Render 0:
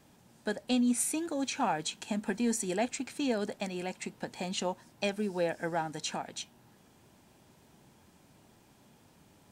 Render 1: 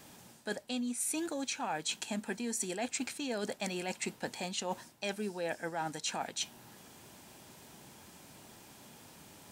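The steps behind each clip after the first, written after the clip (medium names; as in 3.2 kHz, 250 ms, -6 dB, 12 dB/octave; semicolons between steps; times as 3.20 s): tilt EQ +1.5 dB/octave; reverse; compression 10:1, threshold -40 dBFS, peak gain reduction 17.5 dB; reverse; trim +7 dB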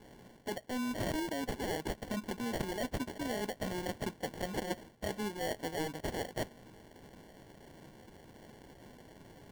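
sample-and-hold 35×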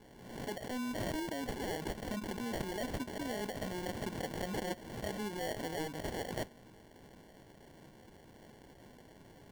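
swell ahead of each attack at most 55 dB/s; trim -2.5 dB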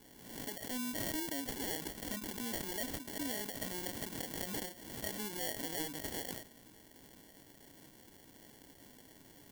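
pre-emphasis filter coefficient 0.8; small resonant body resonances 280/1300/1900/3300 Hz, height 7 dB; endings held to a fixed fall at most 130 dB/s; trim +8.5 dB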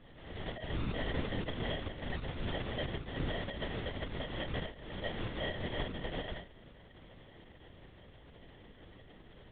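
LPC vocoder at 8 kHz whisper; trim +5 dB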